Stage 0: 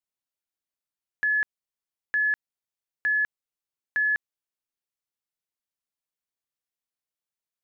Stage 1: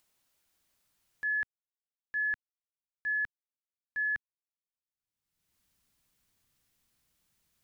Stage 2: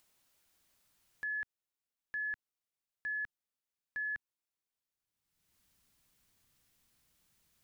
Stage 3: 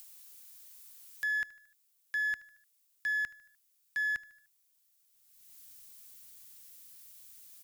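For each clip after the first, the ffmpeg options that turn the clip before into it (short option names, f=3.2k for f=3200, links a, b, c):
-af "agate=range=-33dB:threshold=-21dB:ratio=3:detection=peak,asubboost=boost=4:cutoff=240,acompressor=mode=upward:threshold=-32dB:ratio=2.5,volume=-4dB"
-af "alimiter=level_in=11.5dB:limit=-24dB:level=0:latency=1,volume=-11.5dB,volume=2dB"
-filter_complex "[0:a]acrossover=split=1300[a][b];[a]aeval=exprs='clip(val(0),-1,0.00316)':c=same[c];[c][b]amix=inputs=2:normalize=0,crystalizer=i=6.5:c=0,aecho=1:1:75|150|225|300:0.1|0.052|0.027|0.0141"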